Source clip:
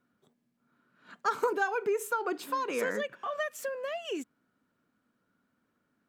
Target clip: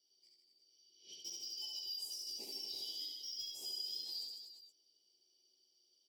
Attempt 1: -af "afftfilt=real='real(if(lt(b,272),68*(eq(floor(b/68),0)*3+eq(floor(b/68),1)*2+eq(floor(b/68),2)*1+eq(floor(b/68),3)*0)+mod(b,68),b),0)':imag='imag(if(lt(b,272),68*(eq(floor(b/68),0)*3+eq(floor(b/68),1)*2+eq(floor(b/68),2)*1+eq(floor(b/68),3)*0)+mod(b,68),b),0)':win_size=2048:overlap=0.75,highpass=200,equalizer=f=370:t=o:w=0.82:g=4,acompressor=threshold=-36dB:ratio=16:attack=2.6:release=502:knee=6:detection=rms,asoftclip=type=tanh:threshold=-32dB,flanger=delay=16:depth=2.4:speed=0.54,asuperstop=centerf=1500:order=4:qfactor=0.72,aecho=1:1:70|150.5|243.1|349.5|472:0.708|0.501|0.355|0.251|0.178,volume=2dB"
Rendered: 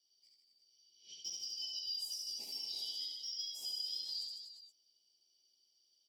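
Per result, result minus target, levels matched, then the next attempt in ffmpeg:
500 Hz band -9.0 dB; soft clip: distortion -12 dB
-af "afftfilt=real='real(if(lt(b,272),68*(eq(floor(b/68),0)*3+eq(floor(b/68),1)*2+eq(floor(b/68),2)*1+eq(floor(b/68),3)*0)+mod(b,68),b),0)':imag='imag(if(lt(b,272),68*(eq(floor(b/68),0)*3+eq(floor(b/68),1)*2+eq(floor(b/68),2)*1+eq(floor(b/68),3)*0)+mod(b,68),b),0)':win_size=2048:overlap=0.75,highpass=200,equalizer=f=370:t=o:w=0.82:g=16,acompressor=threshold=-36dB:ratio=16:attack=2.6:release=502:knee=6:detection=rms,asoftclip=type=tanh:threshold=-32dB,flanger=delay=16:depth=2.4:speed=0.54,asuperstop=centerf=1500:order=4:qfactor=0.72,aecho=1:1:70|150.5|243.1|349.5|472:0.708|0.501|0.355|0.251|0.178,volume=2dB"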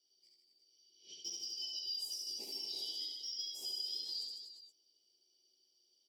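soft clip: distortion -12 dB
-af "afftfilt=real='real(if(lt(b,272),68*(eq(floor(b/68),0)*3+eq(floor(b/68),1)*2+eq(floor(b/68),2)*1+eq(floor(b/68),3)*0)+mod(b,68),b),0)':imag='imag(if(lt(b,272),68*(eq(floor(b/68),0)*3+eq(floor(b/68),1)*2+eq(floor(b/68),2)*1+eq(floor(b/68),3)*0)+mod(b,68),b),0)':win_size=2048:overlap=0.75,highpass=200,equalizer=f=370:t=o:w=0.82:g=16,acompressor=threshold=-36dB:ratio=16:attack=2.6:release=502:knee=6:detection=rms,asoftclip=type=tanh:threshold=-40.5dB,flanger=delay=16:depth=2.4:speed=0.54,asuperstop=centerf=1500:order=4:qfactor=0.72,aecho=1:1:70|150.5|243.1|349.5|472:0.708|0.501|0.355|0.251|0.178,volume=2dB"

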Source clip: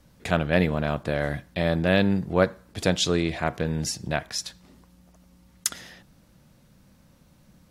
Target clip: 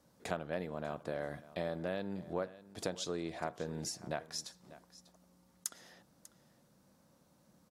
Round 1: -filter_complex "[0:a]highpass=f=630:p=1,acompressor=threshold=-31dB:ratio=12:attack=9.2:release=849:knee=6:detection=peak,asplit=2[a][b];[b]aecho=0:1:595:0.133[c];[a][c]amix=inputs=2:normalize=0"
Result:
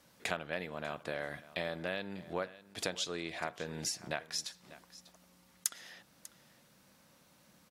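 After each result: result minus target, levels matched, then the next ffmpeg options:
2000 Hz band +5.0 dB; 8000 Hz band +3.0 dB
-filter_complex "[0:a]highpass=f=630:p=1,equalizer=f=2.5k:w=0.66:g=-12.5,acompressor=threshold=-31dB:ratio=12:attack=9.2:release=849:knee=6:detection=peak,asplit=2[a][b];[b]aecho=0:1:595:0.133[c];[a][c]amix=inputs=2:normalize=0"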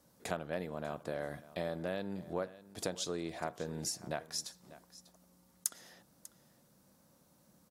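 8000 Hz band +3.0 dB
-filter_complex "[0:a]highpass=f=630:p=1,equalizer=f=2.5k:w=0.66:g=-12.5,acompressor=threshold=-31dB:ratio=12:attack=9.2:release=849:knee=6:detection=peak,highshelf=f=8.9k:g=-10,asplit=2[a][b];[b]aecho=0:1:595:0.133[c];[a][c]amix=inputs=2:normalize=0"

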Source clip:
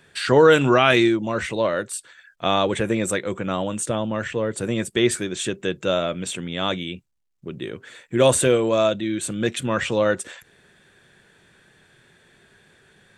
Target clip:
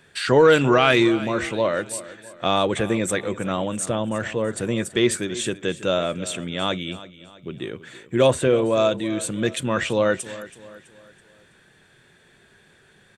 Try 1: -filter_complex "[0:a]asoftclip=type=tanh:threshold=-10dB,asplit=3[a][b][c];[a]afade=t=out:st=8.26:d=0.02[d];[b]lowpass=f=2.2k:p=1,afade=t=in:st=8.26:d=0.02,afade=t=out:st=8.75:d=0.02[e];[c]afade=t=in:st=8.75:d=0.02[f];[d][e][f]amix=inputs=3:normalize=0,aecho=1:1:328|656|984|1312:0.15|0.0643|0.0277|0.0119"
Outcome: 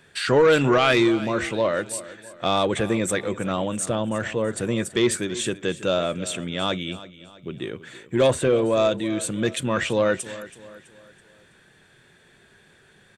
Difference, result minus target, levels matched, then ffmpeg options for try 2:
soft clip: distortion +12 dB
-filter_complex "[0:a]asoftclip=type=tanh:threshold=-2dB,asplit=3[a][b][c];[a]afade=t=out:st=8.26:d=0.02[d];[b]lowpass=f=2.2k:p=1,afade=t=in:st=8.26:d=0.02,afade=t=out:st=8.75:d=0.02[e];[c]afade=t=in:st=8.75:d=0.02[f];[d][e][f]amix=inputs=3:normalize=0,aecho=1:1:328|656|984|1312:0.15|0.0643|0.0277|0.0119"

